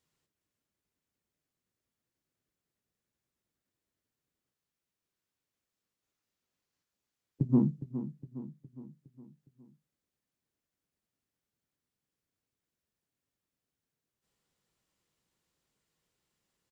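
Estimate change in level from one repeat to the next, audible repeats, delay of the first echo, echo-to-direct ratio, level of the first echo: -5.5 dB, 5, 0.412 s, -10.5 dB, -12.0 dB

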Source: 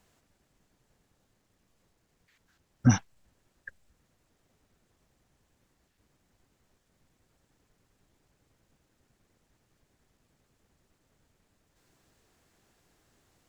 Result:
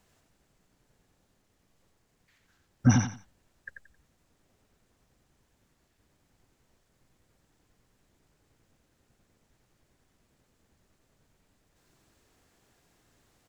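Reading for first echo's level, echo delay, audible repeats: -5.0 dB, 89 ms, 3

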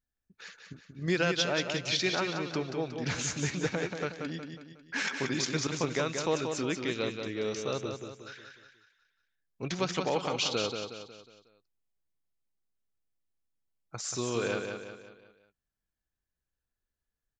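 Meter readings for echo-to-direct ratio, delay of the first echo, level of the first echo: -5.0 dB, 0.182 s, -6.0 dB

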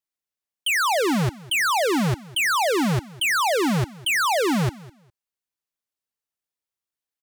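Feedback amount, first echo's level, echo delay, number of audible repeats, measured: 19%, -20.5 dB, 0.204 s, 2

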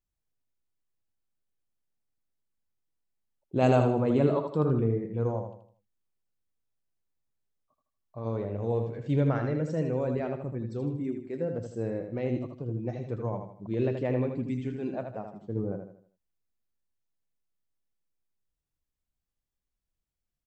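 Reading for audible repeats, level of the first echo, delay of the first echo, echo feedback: 4, -6.5 dB, 79 ms, 39%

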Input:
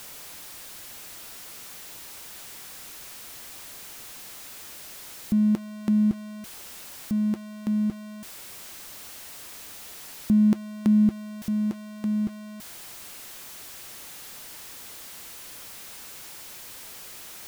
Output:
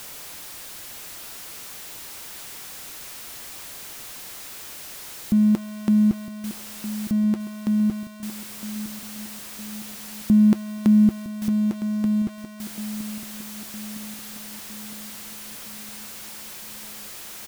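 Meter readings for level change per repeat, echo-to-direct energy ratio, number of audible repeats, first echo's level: -5.0 dB, -11.5 dB, 5, -13.0 dB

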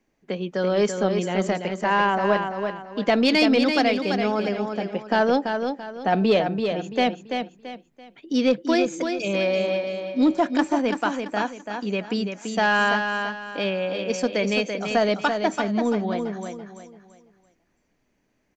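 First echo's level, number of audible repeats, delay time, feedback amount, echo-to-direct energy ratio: -6.0 dB, 4, 0.336 s, 33%, -5.5 dB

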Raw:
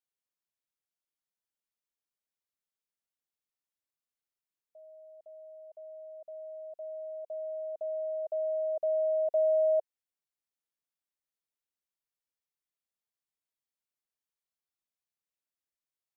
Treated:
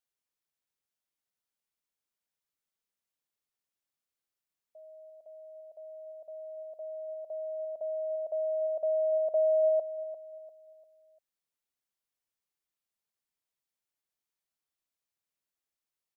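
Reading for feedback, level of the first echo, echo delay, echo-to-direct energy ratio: 36%, -12.5 dB, 0.347 s, -12.0 dB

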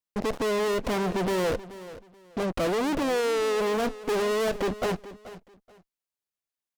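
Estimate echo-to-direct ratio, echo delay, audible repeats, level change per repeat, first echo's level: -16.0 dB, 0.431 s, 2, -12.5 dB, -16.0 dB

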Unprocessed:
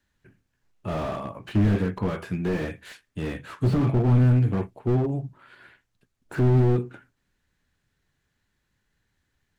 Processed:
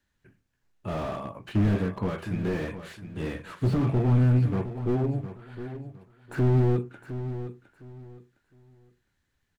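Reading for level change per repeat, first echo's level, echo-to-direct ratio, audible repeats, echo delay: -12.0 dB, -11.5 dB, -11.0 dB, 2, 0.71 s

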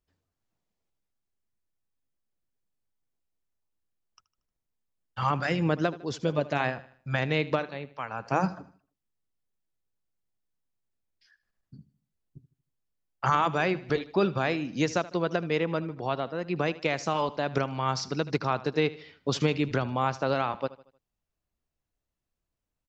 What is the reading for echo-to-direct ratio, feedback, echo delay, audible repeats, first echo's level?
-17.0 dB, 43%, 77 ms, 3, -18.0 dB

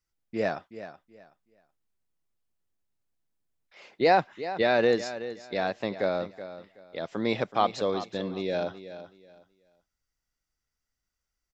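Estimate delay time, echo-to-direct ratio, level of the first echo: 0.375 s, -12.5 dB, -13.0 dB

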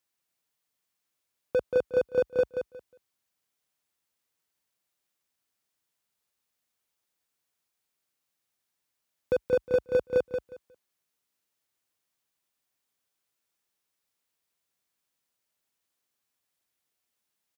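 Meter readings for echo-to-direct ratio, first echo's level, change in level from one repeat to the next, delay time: -6.5 dB, -6.5 dB, -14.0 dB, 0.18 s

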